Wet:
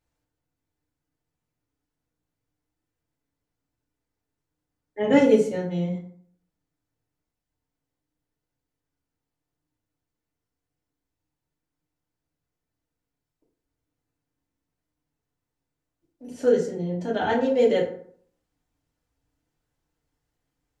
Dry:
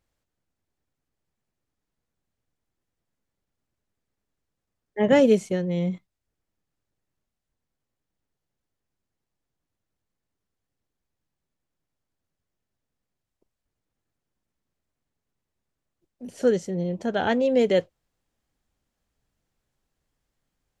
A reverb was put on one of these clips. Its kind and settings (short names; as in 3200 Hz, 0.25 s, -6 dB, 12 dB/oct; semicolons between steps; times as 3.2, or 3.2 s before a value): FDN reverb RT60 0.57 s, low-frequency decay 1.1×, high-frequency decay 0.55×, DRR -4 dB; gain -6 dB